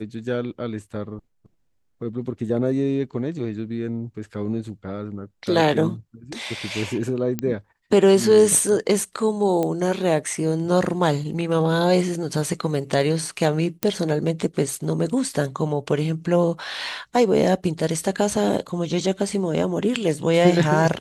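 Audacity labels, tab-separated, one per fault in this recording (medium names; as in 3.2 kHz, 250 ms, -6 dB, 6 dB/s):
7.390000	7.390000	pop -11 dBFS
9.630000	9.630000	pop -12 dBFS
13.830000	13.830000	pop -5 dBFS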